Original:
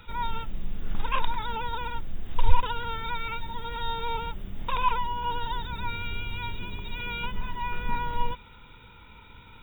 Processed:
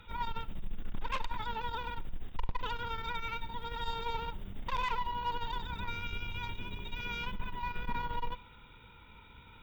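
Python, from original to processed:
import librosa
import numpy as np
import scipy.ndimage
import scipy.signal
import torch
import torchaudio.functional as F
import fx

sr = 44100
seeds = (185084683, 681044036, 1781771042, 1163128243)

y = fx.tube_stage(x, sr, drive_db=24.0, bias=0.55)
y = fx.rev_schroeder(y, sr, rt60_s=0.66, comb_ms=30, drr_db=18.0)
y = F.gain(torch.from_numpy(y), -2.5).numpy()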